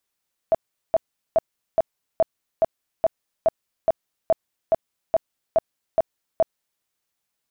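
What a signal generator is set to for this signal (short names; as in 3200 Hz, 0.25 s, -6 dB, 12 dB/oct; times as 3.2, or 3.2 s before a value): tone bursts 654 Hz, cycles 17, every 0.42 s, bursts 15, -13 dBFS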